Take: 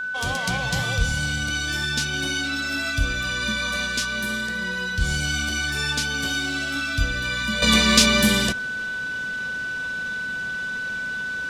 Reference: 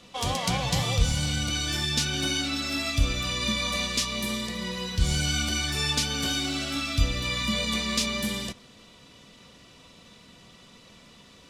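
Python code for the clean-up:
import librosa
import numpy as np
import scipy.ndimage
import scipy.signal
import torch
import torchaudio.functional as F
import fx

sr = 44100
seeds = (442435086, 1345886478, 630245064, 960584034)

y = fx.notch(x, sr, hz=1500.0, q=30.0)
y = fx.gain(y, sr, db=fx.steps((0.0, 0.0), (7.62, -11.0)))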